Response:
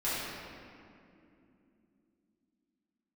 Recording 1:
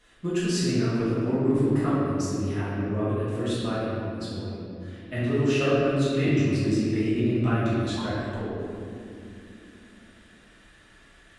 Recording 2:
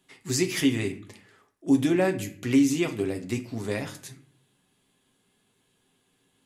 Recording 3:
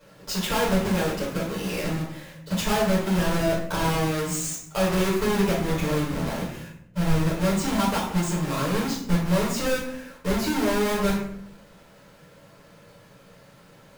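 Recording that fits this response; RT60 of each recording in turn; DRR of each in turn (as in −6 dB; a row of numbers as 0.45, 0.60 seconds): 1; 2.7, 0.50, 0.70 seconds; −12.0, 4.0, −8.0 decibels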